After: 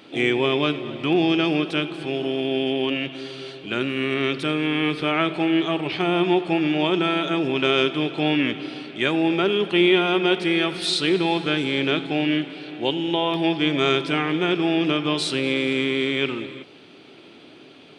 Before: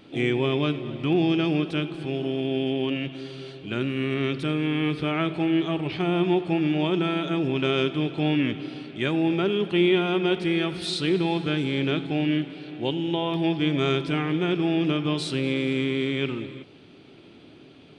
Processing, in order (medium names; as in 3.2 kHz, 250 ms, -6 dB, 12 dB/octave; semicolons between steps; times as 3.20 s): high-pass 420 Hz 6 dB/octave; trim +6.5 dB